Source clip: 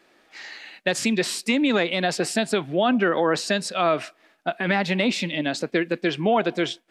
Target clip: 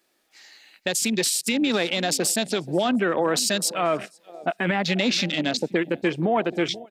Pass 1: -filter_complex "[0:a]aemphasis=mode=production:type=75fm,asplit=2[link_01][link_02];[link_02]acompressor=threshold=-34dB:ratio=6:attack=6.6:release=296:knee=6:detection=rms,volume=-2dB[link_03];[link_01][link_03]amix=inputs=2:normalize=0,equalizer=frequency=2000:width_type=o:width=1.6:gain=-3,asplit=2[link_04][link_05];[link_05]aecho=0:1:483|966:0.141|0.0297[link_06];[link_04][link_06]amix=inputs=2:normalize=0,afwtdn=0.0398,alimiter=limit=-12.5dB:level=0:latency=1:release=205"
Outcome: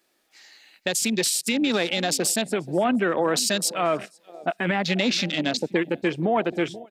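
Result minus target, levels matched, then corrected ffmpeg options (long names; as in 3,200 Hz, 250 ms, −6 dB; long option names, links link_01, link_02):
downward compressor: peak gain reduction +6.5 dB
-filter_complex "[0:a]aemphasis=mode=production:type=75fm,asplit=2[link_01][link_02];[link_02]acompressor=threshold=-26.5dB:ratio=6:attack=6.6:release=296:knee=6:detection=rms,volume=-2dB[link_03];[link_01][link_03]amix=inputs=2:normalize=0,equalizer=frequency=2000:width_type=o:width=1.6:gain=-3,asplit=2[link_04][link_05];[link_05]aecho=0:1:483|966:0.141|0.0297[link_06];[link_04][link_06]amix=inputs=2:normalize=0,afwtdn=0.0398,alimiter=limit=-12.5dB:level=0:latency=1:release=205"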